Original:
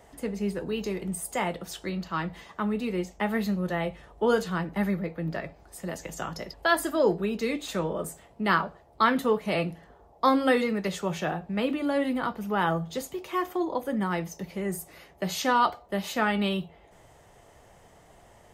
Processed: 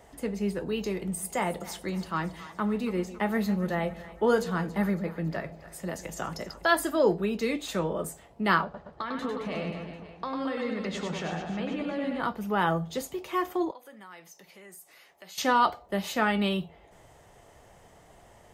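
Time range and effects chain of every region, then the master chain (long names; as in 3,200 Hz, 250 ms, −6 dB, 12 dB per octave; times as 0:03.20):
0:00.95–0:06.69: dynamic equaliser 3,000 Hz, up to −4 dB, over −47 dBFS, Q 1.8 + echo with a time of its own for lows and highs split 760 Hz, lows 148 ms, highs 278 ms, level −15.5 dB
0:08.64–0:12.20: low-pass filter 5,500 Hz + downward compressor 8 to 1, threshold −30 dBFS + reverse bouncing-ball delay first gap 100 ms, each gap 1.2×, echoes 5
0:13.71–0:15.38: high-pass filter 1,300 Hz 6 dB per octave + downward compressor 2 to 1, threshold −53 dBFS
whole clip: no processing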